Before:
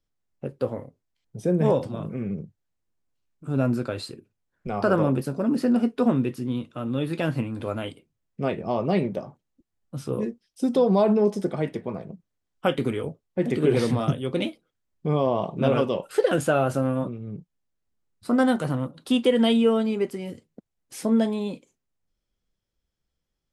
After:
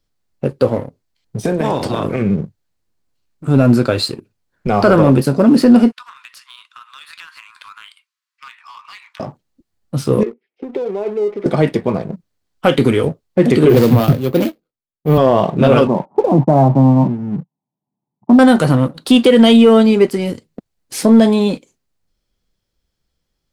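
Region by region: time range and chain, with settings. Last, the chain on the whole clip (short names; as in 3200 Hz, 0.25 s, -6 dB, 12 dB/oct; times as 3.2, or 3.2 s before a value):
1.44–2.21 spectral limiter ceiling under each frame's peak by 15 dB + compressor, threshold -27 dBFS
5.92–9.2 steep high-pass 1000 Hz 72 dB/oct + high shelf 9500 Hz -9.5 dB + compressor 5:1, threshold -46 dBFS
10.23–11.46 compressor 16:1, threshold -31 dBFS + speaker cabinet 380–2400 Hz, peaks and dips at 400 Hz +10 dB, 680 Hz -5 dB, 1100 Hz -9 dB, 1600 Hz -7 dB, 2200 Hz +9 dB + mismatched tape noise reduction decoder only
13.69–15.18 median filter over 25 samples + careless resampling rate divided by 3×, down none, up hold + three-band expander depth 100%
15.87–18.39 switching dead time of 0.18 ms + Chebyshev band-pass 130–930 Hz, order 4 + comb 1 ms, depth 71%
whole clip: bell 4400 Hz +5 dB 0.32 oct; sample leveller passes 1; maximiser +11.5 dB; gain -1 dB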